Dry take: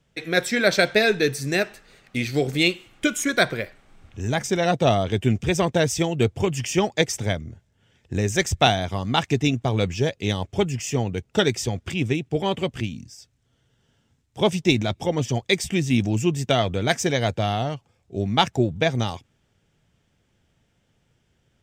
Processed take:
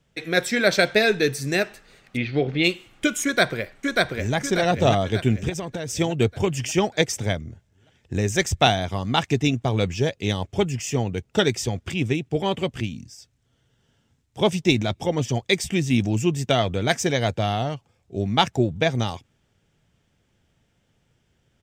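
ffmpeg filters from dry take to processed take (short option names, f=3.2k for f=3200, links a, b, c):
-filter_complex "[0:a]asplit=3[a][b][c];[a]afade=t=out:st=2.16:d=0.02[d];[b]lowpass=f=3.5k:w=0.5412,lowpass=f=3.5k:w=1.3066,afade=t=in:st=2.16:d=0.02,afade=t=out:st=2.63:d=0.02[e];[c]afade=t=in:st=2.63:d=0.02[f];[d][e][f]amix=inputs=3:normalize=0,asplit=2[g][h];[h]afade=t=in:st=3.24:d=0.01,afade=t=out:st=4.35:d=0.01,aecho=0:1:590|1180|1770|2360|2950|3540:0.841395|0.378628|0.170383|0.0766721|0.0345025|0.0155261[i];[g][i]amix=inputs=2:normalize=0,asplit=3[j][k][l];[j]afade=t=out:st=5.48:d=0.02[m];[k]acompressor=threshold=-25dB:ratio=12:attack=3.2:release=140:knee=1:detection=peak,afade=t=in:st=5.48:d=0.02,afade=t=out:st=5.96:d=0.02[n];[l]afade=t=in:st=5.96:d=0.02[o];[m][n][o]amix=inputs=3:normalize=0"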